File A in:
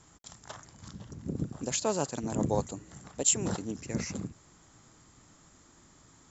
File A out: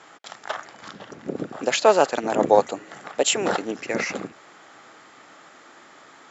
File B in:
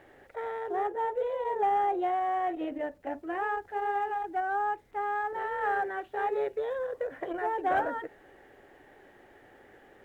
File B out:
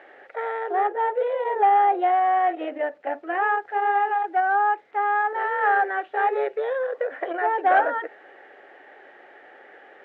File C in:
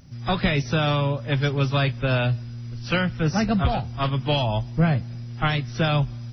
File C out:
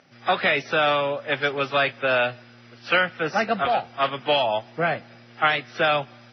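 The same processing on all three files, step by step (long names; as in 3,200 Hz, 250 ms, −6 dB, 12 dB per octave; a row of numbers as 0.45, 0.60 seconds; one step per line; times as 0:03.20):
band-pass filter 570–2,700 Hz
parametric band 1,000 Hz −7 dB 0.26 octaves
loudness normalisation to −23 LKFS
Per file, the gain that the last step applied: +18.5, +11.5, +7.5 decibels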